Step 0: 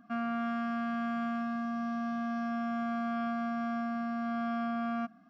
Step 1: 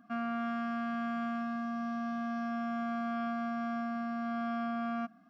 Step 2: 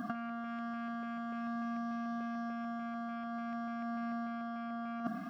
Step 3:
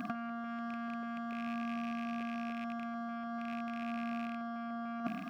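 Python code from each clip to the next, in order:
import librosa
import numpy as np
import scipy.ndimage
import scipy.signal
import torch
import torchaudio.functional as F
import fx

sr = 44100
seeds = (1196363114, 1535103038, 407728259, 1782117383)

y1 = fx.low_shelf(x, sr, hz=63.0, db=-11.0)
y1 = F.gain(torch.from_numpy(y1), -1.0).numpy()
y2 = fx.over_compress(y1, sr, threshold_db=-43.0, ratio=-0.5)
y2 = fx.filter_lfo_notch(y2, sr, shape='square', hz=3.4, low_hz=490.0, high_hz=2400.0, q=2.5)
y2 = F.gain(torch.from_numpy(y2), 8.0).numpy()
y3 = fx.rattle_buzz(y2, sr, strikes_db=-43.0, level_db=-36.0)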